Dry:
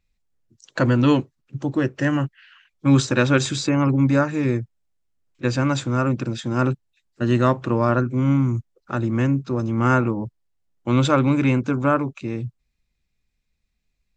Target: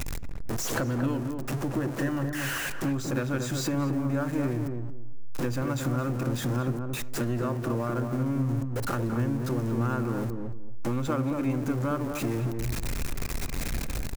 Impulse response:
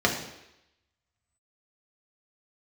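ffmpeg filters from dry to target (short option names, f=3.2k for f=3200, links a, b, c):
-filter_complex "[0:a]aeval=exprs='val(0)+0.5*0.0708*sgn(val(0))':c=same,equalizer=f=3.7k:w=1.1:g=-7.5,acompressor=threshold=-29dB:ratio=5,aeval=exprs='0.178*(cos(1*acos(clip(val(0)/0.178,-1,1)))-cos(1*PI/2))+0.00562*(cos(8*acos(clip(val(0)/0.178,-1,1)))-cos(8*PI/2))':c=same,asplit=2[a][b];[b]adelay=228,lowpass=f=960:p=1,volume=-4dB,asplit=2[c][d];[d]adelay=228,lowpass=f=960:p=1,volume=0.23,asplit=2[e][f];[f]adelay=228,lowpass=f=960:p=1,volume=0.23[g];[a][c][e][g]amix=inputs=4:normalize=0,asplit=2[h][i];[1:a]atrim=start_sample=2205,afade=t=out:st=0.16:d=0.01,atrim=end_sample=7497[j];[i][j]afir=irnorm=-1:irlink=0,volume=-29.5dB[k];[h][k]amix=inputs=2:normalize=0"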